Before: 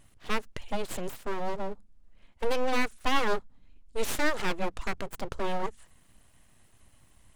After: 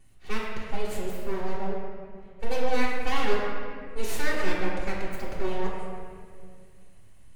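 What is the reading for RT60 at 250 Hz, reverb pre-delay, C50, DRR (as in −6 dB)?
2.7 s, 3 ms, 0.0 dB, −7.0 dB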